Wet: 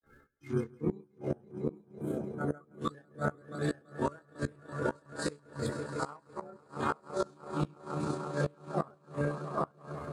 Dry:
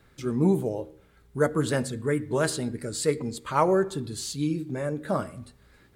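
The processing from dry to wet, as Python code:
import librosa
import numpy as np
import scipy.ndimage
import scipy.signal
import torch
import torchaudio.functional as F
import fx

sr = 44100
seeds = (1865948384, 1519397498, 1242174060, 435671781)

y = fx.spec_quant(x, sr, step_db=30)
y = fx.high_shelf(y, sr, hz=2600.0, db=-6.5)
y = fx.echo_multitap(y, sr, ms=(92, 99, 472, 540, 575), db=(-10.5, -5.5, -12.5, -5.0, -7.5))
y = fx.granulator(y, sr, seeds[0], grain_ms=179.0, per_s=4.3, spray_ms=100.0, spread_st=0)
y = fx.peak_eq(y, sr, hz=1300.0, db=6.0, octaves=1.4)
y = fx.echo_swell(y, sr, ms=97, loudest=5, wet_db=-18.0)
y = fx.gate_flip(y, sr, shuts_db=-18.0, range_db=-26)
y = fx.stretch_grains(y, sr, factor=1.7, grain_ms=67.0)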